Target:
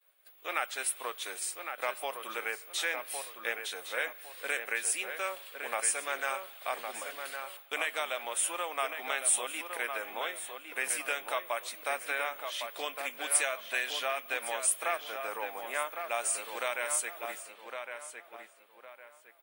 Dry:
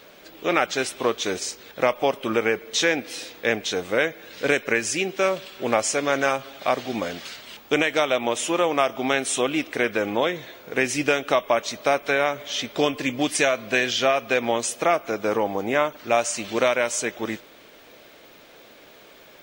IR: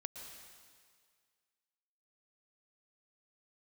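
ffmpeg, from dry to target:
-filter_complex "[0:a]highpass=880,agate=range=-33dB:threshold=-41dB:ratio=3:detection=peak,highshelf=f=7.9k:t=q:w=3:g=10,asplit=2[a][b];[b]adelay=1109,lowpass=f=2.7k:p=1,volume=-6dB,asplit=2[c][d];[d]adelay=1109,lowpass=f=2.7k:p=1,volume=0.33,asplit=2[e][f];[f]adelay=1109,lowpass=f=2.7k:p=1,volume=0.33,asplit=2[g][h];[h]adelay=1109,lowpass=f=2.7k:p=1,volume=0.33[i];[a][c][e][g][i]amix=inputs=5:normalize=0,volume=-8.5dB"

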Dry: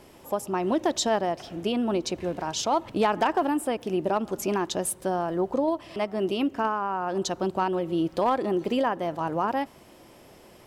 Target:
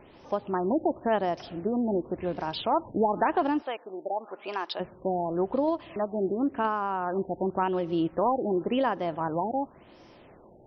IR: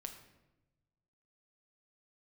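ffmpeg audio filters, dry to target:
-filter_complex "[0:a]asplit=3[a][b][c];[a]afade=t=out:st=3.61:d=0.02[d];[b]highpass=650,afade=t=in:st=3.61:d=0.02,afade=t=out:st=4.79:d=0.02[e];[c]afade=t=in:st=4.79:d=0.02[f];[d][e][f]amix=inputs=3:normalize=0,afftfilt=real='re*lt(b*sr/1024,880*pow(6300/880,0.5+0.5*sin(2*PI*0.92*pts/sr)))':imag='im*lt(b*sr/1024,880*pow(6300/880,0.5+0.5*sin(2*PI*0.92*pts/sr)))':win_size=1024:overlap=0.75,volume=-1dB"

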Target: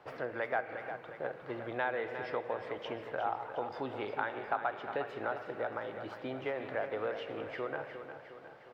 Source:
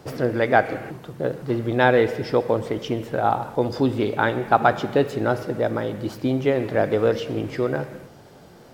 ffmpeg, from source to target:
-filter_complex "[0:a]acrossover=split=560 3000:gain=0.141 1 0.0708[a][b][c];[a][b][c]amix=inputs=3:normalize=0,acompressor=threshold=-29dB:ratio=2.5,aecho=1:1:358|716|1074|1432|1790|2148:0.335|0.178|0.0941|0.0499|0.0264|0.014,volume=-5dB"

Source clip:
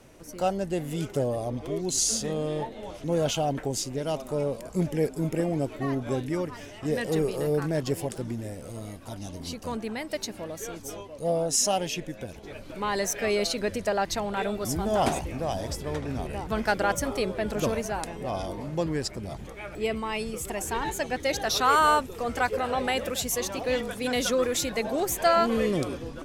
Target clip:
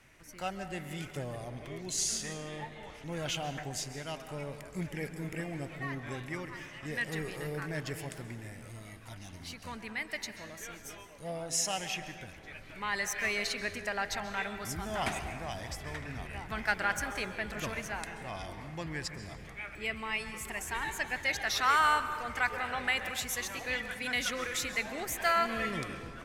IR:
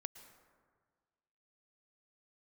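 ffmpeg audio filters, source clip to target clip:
-filter_complex "[0:a]equalizer=f=250:t=o:w=1:g=-4,equalizer=f=500:t=o:w=1:g=-8,equalizer=f=2k:t=o:w=1:g=11,asettb=1/sr,asplit=3[a][b][c];[a]atrim=end=8.584[d];[b]atrim=start=8.58:end=9.67,asetpts=PTS-STARTPTS,afade=t=in:d=0.004:c=qsin,afade=t=out:st=1.086:d=0.004:c=qsin,asoftclip=type=hard:threshold=-29.5dB[e];[c]atrim=start=9.666[f];[d][e]acrossfade=d=0.004:c1=hsin:c2=qsin[g];[g][f]acrossfade=d=0.004:c1=qsin:c2=hsin[h];[1:a]atrim=start_sample=2205,asetrate=37485,aresample=44100[i];[h][i]afir=irnorm=-1:irlink=0,volume=-4dB"

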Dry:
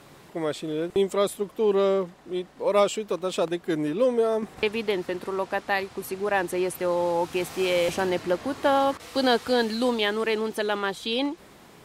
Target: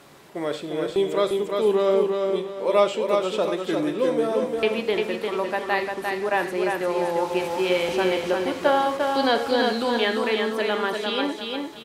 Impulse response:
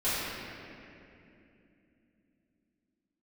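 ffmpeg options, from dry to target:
-filter_complex "[0:a]lowshelf=f=160:g=-8,acrossover=split=4900[a][b];[b]acompressor=threshold=-47dB:ratio=4:attack=1:release=60[c];[a][c]amix=inputs=2:normalize=0,aecho=1:1:349|698|1047|1396:0.631|0.215|0.0729|0.0248,asplit=2[d][e];[1:a]atrim=start_sample=2205,atrim=end_sample=4410,asetrate=41013,aresample=44100[f];[e][f]afir=irnorm=-1:irlink=0,volume=-15dB[g];[d][g]amix=inputs=2:normalize=0"

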